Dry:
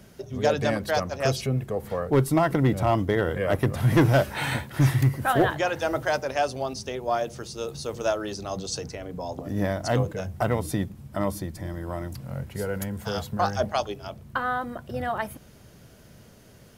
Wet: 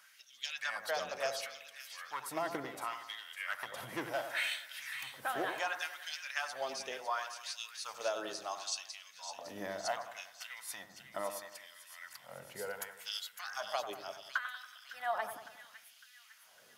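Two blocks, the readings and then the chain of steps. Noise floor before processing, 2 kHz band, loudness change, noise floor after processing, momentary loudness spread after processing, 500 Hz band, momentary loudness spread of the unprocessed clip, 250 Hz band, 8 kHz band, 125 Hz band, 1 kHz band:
−51 dBFS, −7.0 dB, −13.5 dB, −61 dBFS, 14 LU, −15.5 dB, 13 LU, −23.5 dB, −6.0 dB, −36.0 dB, −11.5 dB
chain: parametric band 390 Hz −14.5 dB 1.5 octaves
downward compressor, threshold −28 dBFS, peak gain reduction 10 dB
auto-filter high-pass sine 0.7 Hz 370–3,300 Hz
echo with a time of its own for lows and highs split 1,800 Hz, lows 93 ms, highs 556 ms, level −9 dB
level −5.5 dB

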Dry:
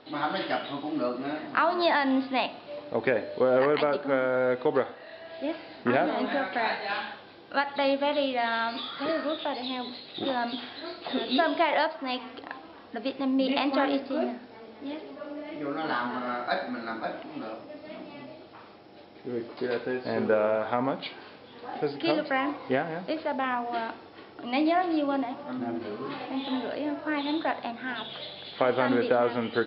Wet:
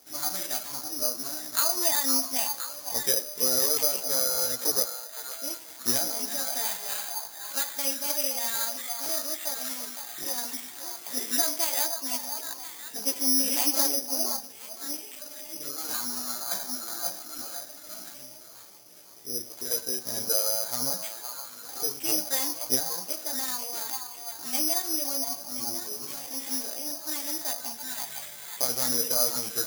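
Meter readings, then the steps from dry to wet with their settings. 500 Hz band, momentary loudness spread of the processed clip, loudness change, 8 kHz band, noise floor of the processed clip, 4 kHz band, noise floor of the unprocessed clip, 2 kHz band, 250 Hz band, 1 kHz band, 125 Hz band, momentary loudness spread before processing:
−10.0 dB, 13 LU, +2.0 dB, can't be measured, −45 dBFS, +5.0 dB, −49 dBFS, −9.0 dB, −10.0 dB, −9.5 dB, −7.5 dB, 15 LU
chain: echo through a band-pass that steps 515 ms, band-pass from 950 Hz, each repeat 0.7 octaves, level −4 dB
multi-voice chorus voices 4, 0.83 Hz, delay 16 ms, depth 1.2 ms
bad sample-rate conversion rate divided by 8×, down none, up zero stuff
level −8 dB

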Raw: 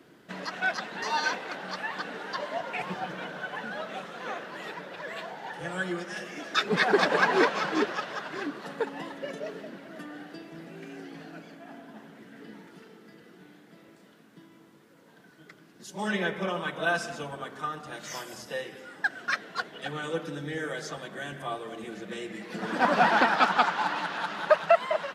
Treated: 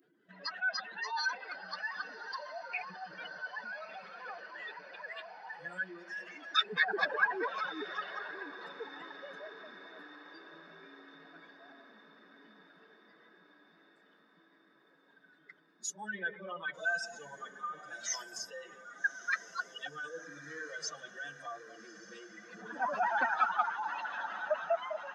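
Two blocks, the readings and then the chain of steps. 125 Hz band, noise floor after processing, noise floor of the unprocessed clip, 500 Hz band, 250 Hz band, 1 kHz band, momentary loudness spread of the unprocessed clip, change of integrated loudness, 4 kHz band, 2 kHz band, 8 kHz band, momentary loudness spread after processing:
−19.5 dB, −66 dBFS, −56 dBFS, −12.0 dB, −17.0 dB, −8.0 dB, 21 LU, −7.0 dB, −5.0 dB, −5.0 dB, +1.0 dB, 20 LU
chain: expanding power law on the bin magnitudes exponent 2.3
first-order pre-emphasis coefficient 0.97
feedback delay with all-pass diffusion 1,218 ms, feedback 60%, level −15 dB
level +9 dB

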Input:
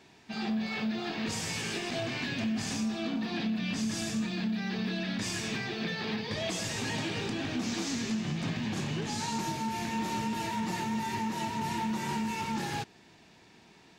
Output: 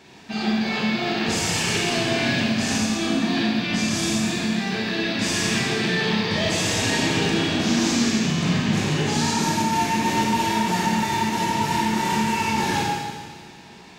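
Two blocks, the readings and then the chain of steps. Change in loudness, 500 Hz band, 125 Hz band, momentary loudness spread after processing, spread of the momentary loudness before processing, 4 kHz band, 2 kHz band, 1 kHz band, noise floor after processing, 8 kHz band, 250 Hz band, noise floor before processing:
+11.0 dB, +12.0 dB, +10.5 dB, 3 LU, 2 LU, +12.5 dB, +12.0 dB, +12.0 dB, −44 dBFS, +12.0 dB, +10.0 dB, −58 dBFS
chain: four-comb reverb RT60 1.7 s, combs from 30 ms, DRR −3 dB
level +7.5 dB

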